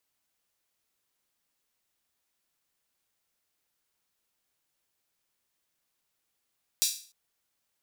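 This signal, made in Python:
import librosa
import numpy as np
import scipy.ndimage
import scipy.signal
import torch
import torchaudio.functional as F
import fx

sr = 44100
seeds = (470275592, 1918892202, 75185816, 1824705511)

y = fx.drum_hat_open(sr, length_s=0.3, from_hz=4500.0, decay_s=0.42)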